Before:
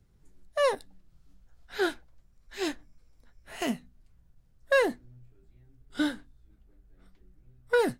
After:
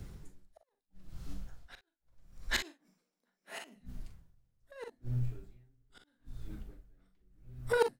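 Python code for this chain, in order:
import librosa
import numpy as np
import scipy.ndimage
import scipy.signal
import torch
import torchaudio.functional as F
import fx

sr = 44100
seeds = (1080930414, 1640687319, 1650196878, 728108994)

y = fx.ellip_highpass(x, sr, hz=180.0, order=4, stop_db=40, at=(2.56, 3.74), fade=0.02)
y = fx.over_compress(y, sr, threshold_db=-29.0, ratio=-0.5)
y = fx.gate_flip(y, sr, shuts_db=-29.0, range_db=-38)
y = fx.room_early_taps(y, sr, ms=(42, 57), db=(-8.5, -12.5))
y = y * 10.0 ** (-31 * (0.5 - 0.5 * np.cos(2.0 * np.pi * 0.77 * np.arange(len(y)) / sr)) / 20.0)
y = y * 10.0 ** (13.5 / 20.0)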